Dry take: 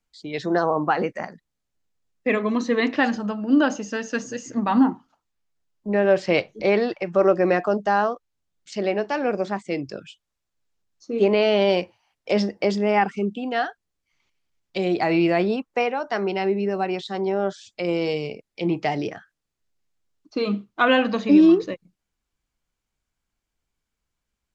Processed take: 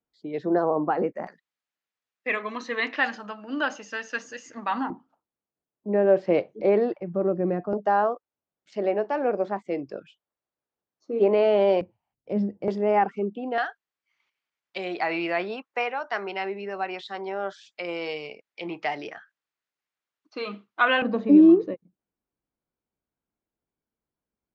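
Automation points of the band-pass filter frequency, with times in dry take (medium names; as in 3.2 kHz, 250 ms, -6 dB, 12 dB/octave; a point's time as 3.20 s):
band-pass filter, Q 0.73
400 Hz
from 1.27 s 1.9 kHz
from 4.90 s 410 Hz
from 7.00 s 150 Hz
from 7.73 s 600 Hz
from 11.81 s 130 Hz
from 12.68 s 570 Hz
from 13.58 s 1.6 kHz
from 21.02 s 360 Hz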